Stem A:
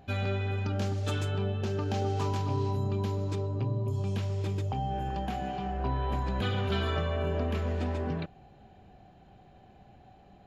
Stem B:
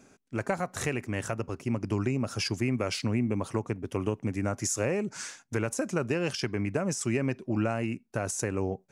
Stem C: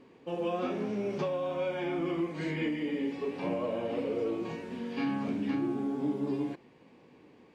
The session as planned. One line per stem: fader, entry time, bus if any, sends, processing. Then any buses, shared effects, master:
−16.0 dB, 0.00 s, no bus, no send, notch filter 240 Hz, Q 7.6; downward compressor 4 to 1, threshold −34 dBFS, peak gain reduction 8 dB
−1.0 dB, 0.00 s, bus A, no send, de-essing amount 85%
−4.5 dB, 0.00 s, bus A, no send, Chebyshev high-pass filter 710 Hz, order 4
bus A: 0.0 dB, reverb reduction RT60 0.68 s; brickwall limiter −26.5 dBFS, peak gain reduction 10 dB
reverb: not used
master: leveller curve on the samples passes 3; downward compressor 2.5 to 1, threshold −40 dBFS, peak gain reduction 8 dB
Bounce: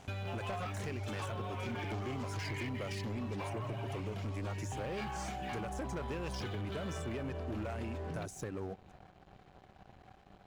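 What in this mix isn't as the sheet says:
stem A −16.0 dB → −9.0 dB
stem B −1.0 dB → −12.0 dB

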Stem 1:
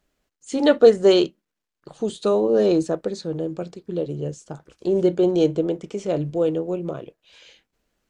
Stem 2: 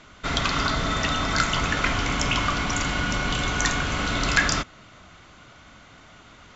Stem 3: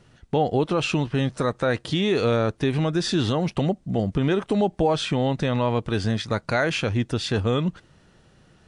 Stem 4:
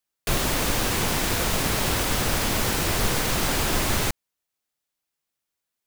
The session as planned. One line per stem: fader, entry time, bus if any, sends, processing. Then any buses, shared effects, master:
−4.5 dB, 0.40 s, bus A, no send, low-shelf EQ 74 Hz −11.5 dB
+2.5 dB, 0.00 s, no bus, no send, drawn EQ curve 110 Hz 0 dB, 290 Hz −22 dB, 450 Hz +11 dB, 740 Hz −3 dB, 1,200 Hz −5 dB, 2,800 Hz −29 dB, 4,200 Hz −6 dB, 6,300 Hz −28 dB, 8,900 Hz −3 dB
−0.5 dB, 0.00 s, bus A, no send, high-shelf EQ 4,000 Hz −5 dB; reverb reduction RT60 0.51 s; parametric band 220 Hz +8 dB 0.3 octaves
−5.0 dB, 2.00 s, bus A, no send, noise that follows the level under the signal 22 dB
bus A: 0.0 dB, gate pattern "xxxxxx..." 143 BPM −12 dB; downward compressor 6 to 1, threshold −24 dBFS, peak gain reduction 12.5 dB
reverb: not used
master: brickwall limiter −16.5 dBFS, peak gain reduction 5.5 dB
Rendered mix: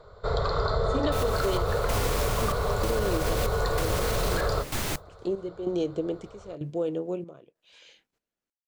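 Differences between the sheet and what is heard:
stem 3: muted
stem 4: entry 2.00 s → 0.85 s

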